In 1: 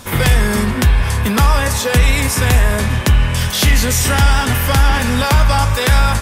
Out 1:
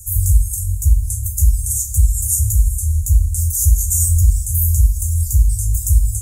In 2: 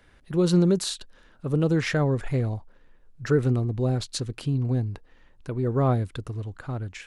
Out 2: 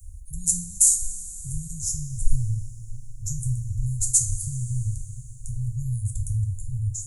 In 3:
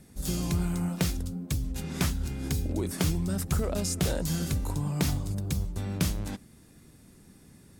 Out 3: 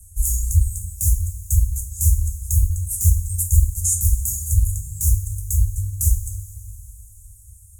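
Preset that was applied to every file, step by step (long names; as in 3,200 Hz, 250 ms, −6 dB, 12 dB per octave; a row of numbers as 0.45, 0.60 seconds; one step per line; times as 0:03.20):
reverb reduction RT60 1 s
Chebyshev band-stop filter 100–6,800 Hz, order 5
brickwall limiter −12 dBFS
coupled-rooms reverb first 0.37 s, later 3.6 s, from −18 dB, DRR 1.5 dB
normalise the peak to −2 dBFS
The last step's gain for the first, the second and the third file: +5.0, +19.0, +14.5 decibels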